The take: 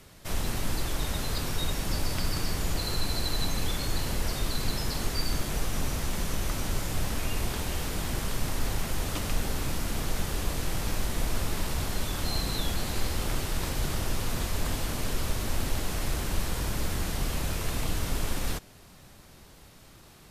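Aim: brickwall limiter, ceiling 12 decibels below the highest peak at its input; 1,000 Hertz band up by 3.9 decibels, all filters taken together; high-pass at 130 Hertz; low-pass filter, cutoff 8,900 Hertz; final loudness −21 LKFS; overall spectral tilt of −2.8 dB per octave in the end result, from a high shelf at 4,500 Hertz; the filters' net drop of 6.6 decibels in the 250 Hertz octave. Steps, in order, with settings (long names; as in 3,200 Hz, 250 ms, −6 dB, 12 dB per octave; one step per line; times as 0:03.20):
high-pass filter 130 Hz
low-pass filter 8,900 Hz
parametric band 250 Hz −9 dB
parametric band 1,000 Hz +5 dB
high-shelf EQ 4,500 Hz +7 dB
level +14 dB
brickwall limiter −13 dBFS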